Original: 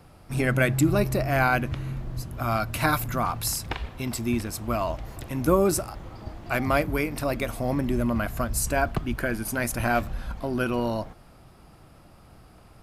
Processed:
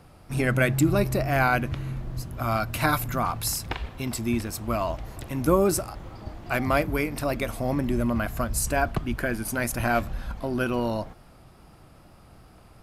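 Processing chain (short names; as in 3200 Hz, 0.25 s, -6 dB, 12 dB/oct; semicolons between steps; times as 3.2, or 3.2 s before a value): wow and flutter 24 cents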